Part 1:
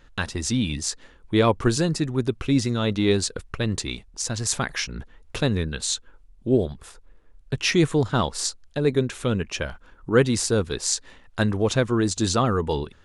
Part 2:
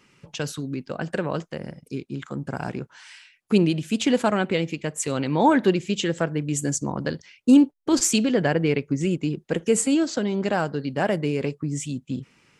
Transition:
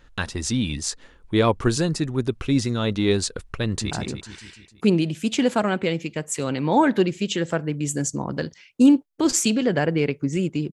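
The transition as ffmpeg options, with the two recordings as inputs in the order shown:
-filter_complex "[0:a]apad=whole_dur=10.72,atrim=end=10.72,atrim=end=3.912[a];[1:a]atrim=start=2.588:end=9.4[b];[a][b]acrossfade=d=0.004:c1=hsin:c2=hsin,asplit=2[c][d];[d]afade=t=in:st=3.66:d=0.01,afade=t=out:st=3.91:d=0.01,aecho=0:1:150|300|450|600|750|900|1050|1200:0.562341|0.337405|0.202443|0.121466|0.0728794|0.0437277|0.0262366|0.015742[e];[c][e]amix=inputs=2:normalize=0"

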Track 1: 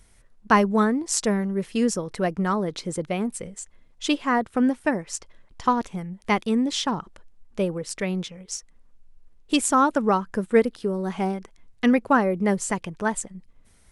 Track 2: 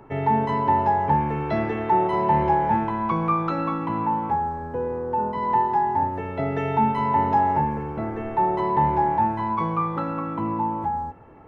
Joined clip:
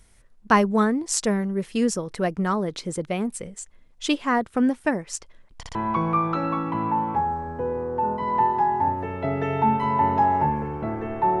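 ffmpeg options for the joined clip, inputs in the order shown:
-filter_complex "[0:a]apad=whole_dur=11.4,atrim=end=11.4,asplit=3[a][b][c];[a]atrim=end=5.632[d];[b]atrim=start=5.568:end=5.632[e];[c]atrim=start=5.568:end=5.632[f];[1:a]atrim=start=2.898:end=8.55[g];[d][e]acrossfade=d=0.004:c1=hsin:c2=hsin[h];[h][f]acrossfade=d=0.004:c1=hsin:c2=hsin[i];[i][g]acrossfade=d=0.004:c1=hsin:c2=hsin"

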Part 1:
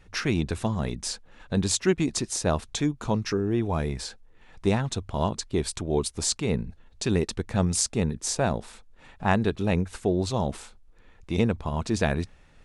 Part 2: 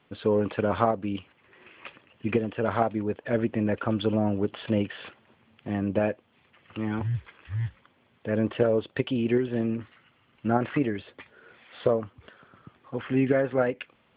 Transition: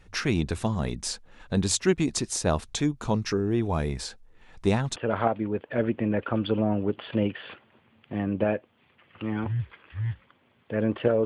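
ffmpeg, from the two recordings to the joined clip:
-filter_complex "[0:a]apad=whole_dur=11.25,atrim=end=11.25,atrim=end=4.962[a];[1:a]atrim=start=2.508:end=8.8[b];[a][b]acrossfade=d=0.004:c1=hsin:c2=hsin"

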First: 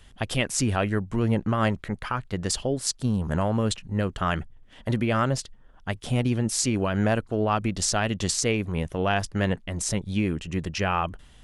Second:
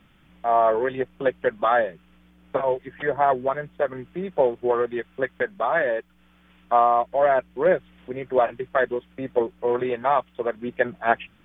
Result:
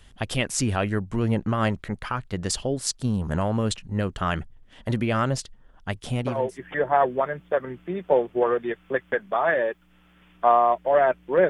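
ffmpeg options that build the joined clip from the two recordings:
-filter_complex "[0:a]apad=whole_dur=11.49,atrim=end=11.49,atrim=end=6.58,asetpts=PTS-STARTPTS[a];[1:a]atrim=start=2.3:end=7.77,asetpts=PTS-STARTPTS[b];[a][b]acrossfade=d=0.56:c1=tri:c2=tri"

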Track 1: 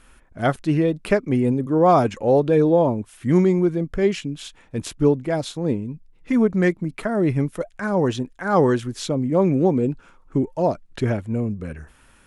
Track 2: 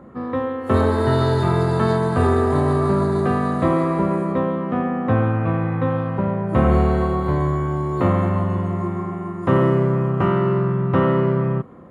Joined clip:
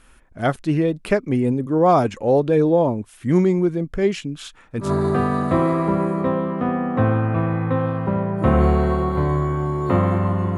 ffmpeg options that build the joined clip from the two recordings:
-filter_complex "[0:a]asettb=1/sr,asplit=3[a][b][c];[a]atrim=end=4.354[d];[b]atrim=start=4.35:end=4.92,asetpts=PTS-STARTPTS,afade=t=in:d=0.004:c=qsin,afade=t=out:st=0.566:d=0.004:c=qsin,equalizer=f=1.3k:w=2.3:g=9.5[e];[c]atrim=start=4.916[f];[d][e]acrossfade=d=0.004:c1=hsin:c2=qsin[g];[g][f]acrossfade=d=0.004:c1=qsin:c2=hsin,apad=whole_dur=10.57,atrim=end=10.57,atrim=end=4.92,asetpts=PTS-STARTPTS[h];[1:a]atrim=start=2.91:end=8.68,asetpts=PTS-STARTPTS[i];[h][i]acrossfade=d=0.12:c1=tri:c2=tri"

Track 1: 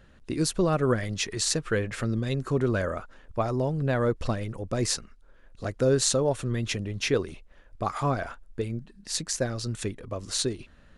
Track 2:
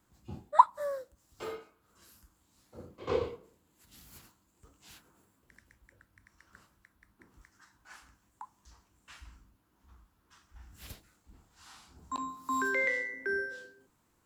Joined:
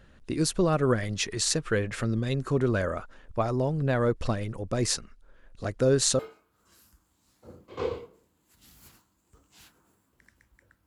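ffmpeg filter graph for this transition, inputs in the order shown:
-filter_complex "[0:a]apad=whole_dur=10.86,atrim=end=10.86,atrim=end=6.192[a];[1:a]atrim=start=1.488:end=6.16[b];[a][b]acrossfade=d=0.004:c1=hsin:c2=hsin"

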